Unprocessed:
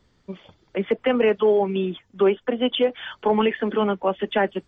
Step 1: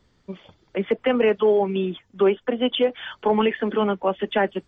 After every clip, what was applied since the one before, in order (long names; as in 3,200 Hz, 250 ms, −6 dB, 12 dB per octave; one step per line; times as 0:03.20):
no processing that can be heard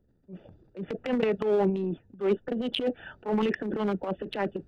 adaptive Wiener filter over 41 samples
transient designer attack −10 dB, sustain +11 dB
level −5 dB